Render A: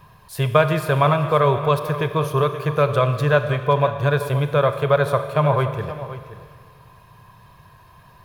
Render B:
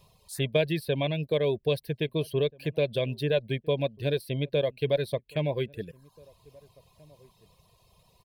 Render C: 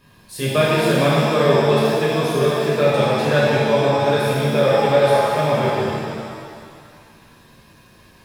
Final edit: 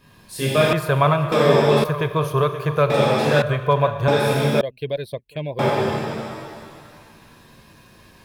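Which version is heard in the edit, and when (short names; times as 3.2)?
C
0.73–1.32 from A
1.84–2.9 from A
3.42–4.08 from A
4.61–5.59 from B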